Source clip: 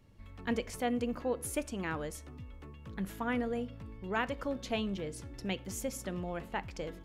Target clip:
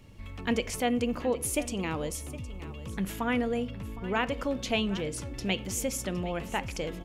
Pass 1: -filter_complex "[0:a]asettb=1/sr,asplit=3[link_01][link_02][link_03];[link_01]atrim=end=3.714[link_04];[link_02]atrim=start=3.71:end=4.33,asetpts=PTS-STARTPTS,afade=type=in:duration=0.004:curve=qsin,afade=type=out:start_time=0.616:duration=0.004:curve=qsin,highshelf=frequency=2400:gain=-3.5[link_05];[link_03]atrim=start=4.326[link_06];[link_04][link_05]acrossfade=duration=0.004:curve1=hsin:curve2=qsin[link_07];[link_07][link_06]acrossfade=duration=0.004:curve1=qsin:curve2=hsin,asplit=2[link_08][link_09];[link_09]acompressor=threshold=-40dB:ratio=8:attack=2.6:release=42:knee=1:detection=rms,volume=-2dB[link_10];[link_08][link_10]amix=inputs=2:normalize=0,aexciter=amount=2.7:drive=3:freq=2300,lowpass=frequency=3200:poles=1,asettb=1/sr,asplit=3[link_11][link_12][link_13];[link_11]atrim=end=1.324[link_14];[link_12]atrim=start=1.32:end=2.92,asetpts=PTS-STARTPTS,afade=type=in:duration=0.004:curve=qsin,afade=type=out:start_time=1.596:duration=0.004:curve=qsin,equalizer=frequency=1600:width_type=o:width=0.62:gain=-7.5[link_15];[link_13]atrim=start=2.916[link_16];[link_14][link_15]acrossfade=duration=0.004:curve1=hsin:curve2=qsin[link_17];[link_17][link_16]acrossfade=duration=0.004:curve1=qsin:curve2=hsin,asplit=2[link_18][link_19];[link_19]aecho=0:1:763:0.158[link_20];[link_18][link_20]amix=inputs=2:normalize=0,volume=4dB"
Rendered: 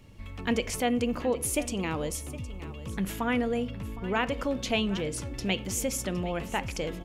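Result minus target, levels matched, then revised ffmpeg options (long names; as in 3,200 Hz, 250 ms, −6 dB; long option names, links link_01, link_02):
downward compressor: peak gain reduction −6 dB
-filter_complex "[0:a]asettb=1/sr,asplit=3[link_01][link_02][link_03];[link_01]atrim=end=3.714[link_04];[link_02]atrim=start=3.71:end=4.33,asetpts=PTS-STARTPTS,afade=type=in:duration=0.004:curve=qsin,afade=type=out:start_time=0.616:duration=0.004:curve=qsin,highshelf=frequency=2400:gain=-3.5[link_05];[link_03]atrim=start=4.326[link_06];[link_04][link_05]acrossfade=duration=0.004:curve1=hsin:curve2=qsin[link_07];[link_07][link_06]acrossfade=duration=0.004:curve1=qsin:curve2=hsin,asplit=2[link_08][link_09];[link_09]acompressor=threshold=-47dB:ratio=8:attack=2.6:release=42:knee=1:detection=rms,volume=-2dB[link_10];[link_08][link_10]amix=inputs=2:normalize=0,aexciter=amount=2.7:drive=3:freq=2300,lowpass=frequency=3200:poles=1,asettb=1/sr,asplit=3[link_11][link_12][link_13];[link_11]atrim=end=1.324[link_14];[link_12]atrim=start=1.32:end=2.92,asetpts=PTS-STARTPTS,afade=type=in:duration=0.004:curve=qsin,afade=type=out:start_time=1.596:duration=0.004:curve=qsin,equalizer=frequency=1600:width_type=o:width=0.62:gain=-7.5[link_15];[link_13]atrim=start=2.916[link_16];[link_14][link_15]acrossfade=duration=0.004:curve1=hsin:curve2=qsin[link_17];[link_17][link_16]acrossfade=duration=0.004:curve1=qsin:curve2=hsin,asplit=2[link_18][link_19];[link_19]aecho=0:1:763:0.158[link_20];[link_18][link_20]amix=inputs=2:normalize=0,volume=4dB"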